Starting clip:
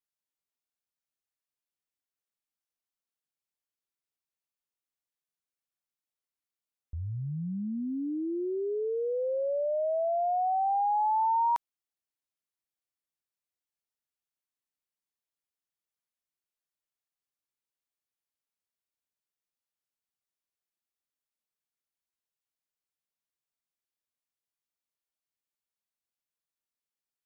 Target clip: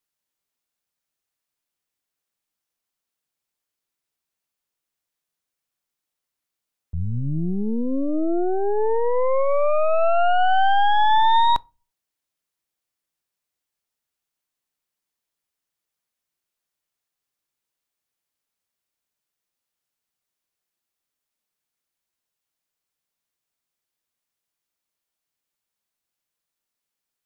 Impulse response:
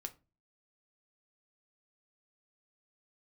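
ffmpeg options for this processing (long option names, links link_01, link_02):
-filter_complex "[0:a]aeval=exprs='0.0794*(cos(1*acos(clip(val(0)/0.0794,-1,1)))-cos(1*PI/2))+0.02*(cos(4*acos(clip(val(0)/0.0794,-1,1)))-cos(4*PI/2))+0.000501*(cos(8*acos(clip(val(0)/0.0794,-1,1)))-cos(8*PI/2))':channel_layout=same,asplit=2[link_01][link_02];[1:a]atrim=start_sample=2205[link_03];[link_02][link_03]afir=irnorm=-1:irlink=0,volume=-8.5dB[link_04];[link_01][link_04]amix=inputs=2:normalize=0,volume=6.5dB"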